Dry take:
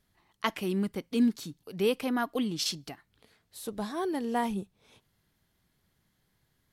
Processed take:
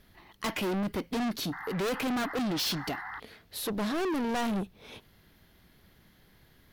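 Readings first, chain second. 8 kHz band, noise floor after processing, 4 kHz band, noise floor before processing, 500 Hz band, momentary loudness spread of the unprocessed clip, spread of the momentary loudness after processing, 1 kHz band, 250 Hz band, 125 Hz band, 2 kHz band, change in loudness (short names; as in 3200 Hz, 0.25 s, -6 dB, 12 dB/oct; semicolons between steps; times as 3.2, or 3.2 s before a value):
+1.0 dB, -62 dBFS, +2.0 dB, -75 dBFS, -1.0 dB, 15 LU, 12 LU, +0.5 dB, -1.0 dB, +2.0 dB, +3.0 dB, -0.5 dB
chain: ten-band EQ 125 Hz -5 dB, 1000 Hz -3 dB, 8000 Hz -12 dB; sine folder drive 11 dB, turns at -13.5 dBFS; painted sound noise, 1.52–3.2, 720–2100 Hz -40 dBFS; soft clip -28.5 dBFS, distortion -6 dB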